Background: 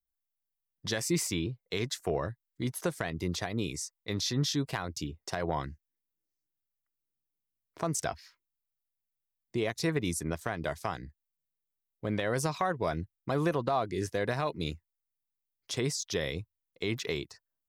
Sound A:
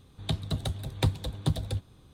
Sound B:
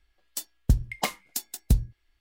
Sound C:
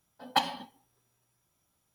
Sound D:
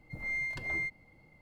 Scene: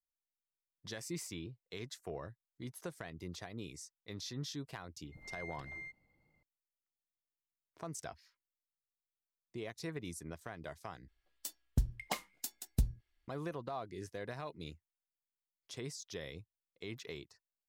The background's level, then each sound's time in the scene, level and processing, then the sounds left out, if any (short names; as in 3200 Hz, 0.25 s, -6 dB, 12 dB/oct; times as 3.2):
background -12.5 dB
5.02 add D -13.5 dB
11.08 replace with B -10 dB
not used: A, C